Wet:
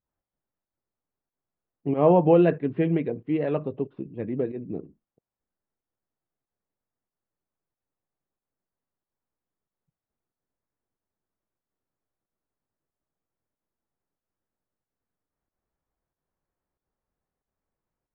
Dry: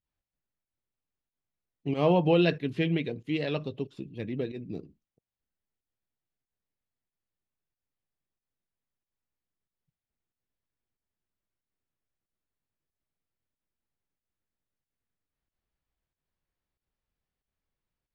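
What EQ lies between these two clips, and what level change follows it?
LPF 1300 Hz 12 dB/oct; air absorption 280 m; low shelf 180 Hz -9.5 dB; +8.0 dB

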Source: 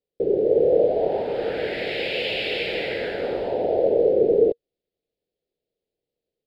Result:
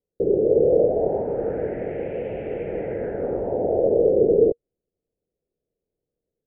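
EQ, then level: Gaussian blur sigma 5.2 samples; air absorption 490 m; low shelf 310 Hz +7.5 dB; 0.0 dB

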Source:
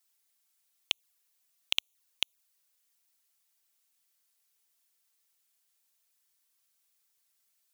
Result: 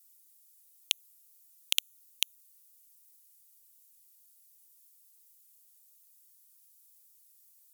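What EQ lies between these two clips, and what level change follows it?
high shelf 5300 Hz +10 dB; bell 15000 Hz +11 dB 1.8 oct; -5.5 dB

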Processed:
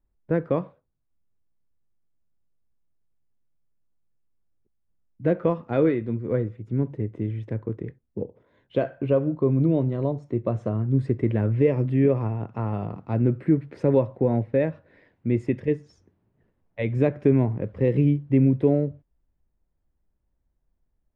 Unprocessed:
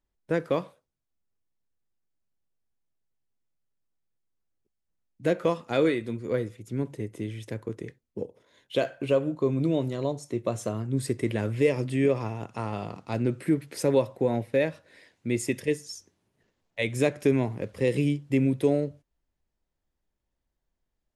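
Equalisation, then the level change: LPF 1700 Hz 12 dB/oct; low shelf 240 Hz +9.5 dB; 0.0 dB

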